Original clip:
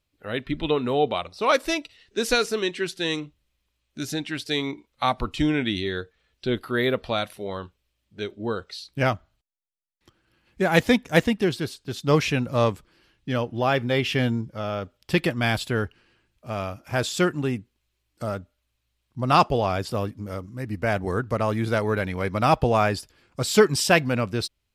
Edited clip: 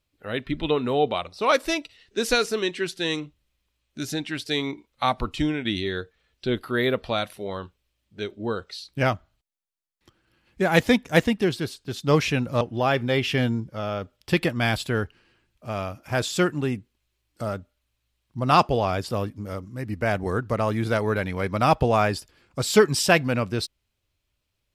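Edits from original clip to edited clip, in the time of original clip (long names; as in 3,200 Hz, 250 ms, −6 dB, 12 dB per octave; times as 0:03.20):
0:05.23–0:05.65: fade out equal-power, to −8 dB
0:12.61–0:13.42: remove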